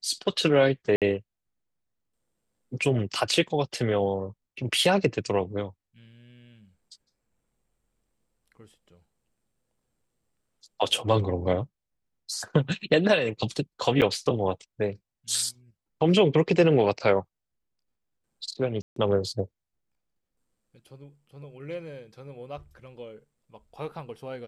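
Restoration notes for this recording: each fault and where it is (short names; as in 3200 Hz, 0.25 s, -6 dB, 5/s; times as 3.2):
0.96–1.02 gap 57 ms
14.01–14.02 gap 7.8 ms
18.82–18.96 gap 0.143 s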